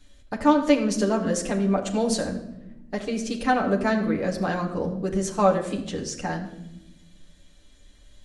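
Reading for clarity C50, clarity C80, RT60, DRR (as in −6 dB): 9.5 dB, 11.0 dB, 0.90 s, −1.0 dB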